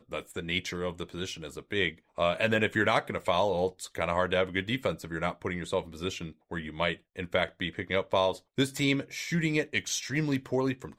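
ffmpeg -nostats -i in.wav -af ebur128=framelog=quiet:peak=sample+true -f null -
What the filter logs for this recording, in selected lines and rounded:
Integrated loudness:
  I:         -30.3 LUFS
  Threshold: -40.3 LUFS
Loudness range:
  LRA:         4.2 LU
  Threshold: -50.1 LUFS
  LRA low:   -32.6 LUFS
  LRA high:  -28.5 LUFS
Sample peak:
  Peak:      -12.2 dBFS
True peak:
  Peak:      -12.1 dBFS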